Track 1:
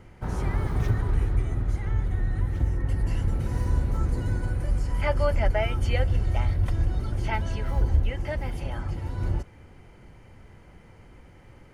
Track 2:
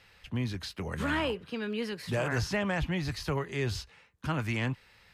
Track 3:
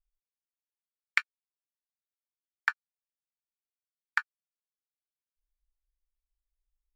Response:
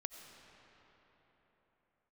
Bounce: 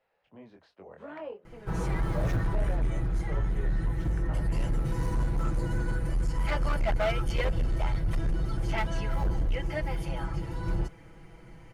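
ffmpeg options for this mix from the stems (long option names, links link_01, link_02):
-filter_complex "[0:a]aecho=1:1:6.1:1,acontrast=29,asoftclip=type=hard:threshold=-14.5dB,adelay=1450,volume=-8dB[link_01];[1:a]bandpass=frequency=610:width_type=q:width=2.3:csg=0,flanger=delay=20:depth=5:speed=2.6,volume=-0.5dB[link_02];[2:a]lowpass=frequency=1400:poles=1,alimiter=limit=-21dB:level=0:latency=1,volume=-13.5dB[link_03];[link_01][link_02][link_03]amix=inputs=3:normalize=0"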